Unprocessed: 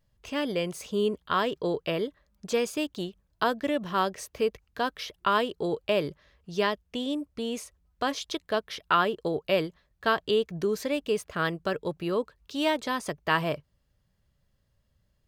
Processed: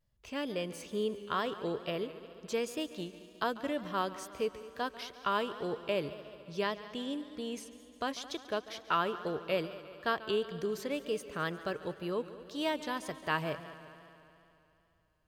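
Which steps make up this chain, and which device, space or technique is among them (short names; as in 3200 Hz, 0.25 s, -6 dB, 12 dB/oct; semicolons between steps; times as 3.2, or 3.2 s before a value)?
multi-head tape echo (multi-head echo 71 ms, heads second and third, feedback 65%, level -17 dB; wow and flutter); gain -7 dB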